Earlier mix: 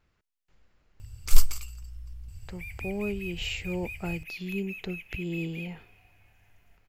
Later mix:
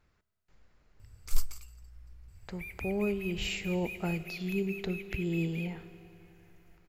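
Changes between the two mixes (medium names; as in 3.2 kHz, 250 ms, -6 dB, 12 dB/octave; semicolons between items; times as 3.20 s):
speech: send on; first sound -10.0 dB; master: add peaking EQ 2.9 kHz -4 dB 0.49 oct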